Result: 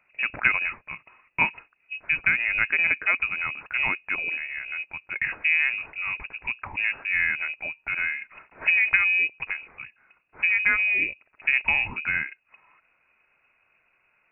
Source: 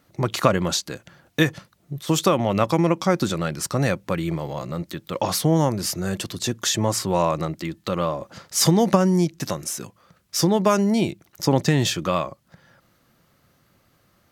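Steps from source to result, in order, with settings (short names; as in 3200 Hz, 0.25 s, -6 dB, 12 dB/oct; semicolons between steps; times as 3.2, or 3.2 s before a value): HPF 110 Hz; inverted band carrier 2700 Hz; gain -3.5 dB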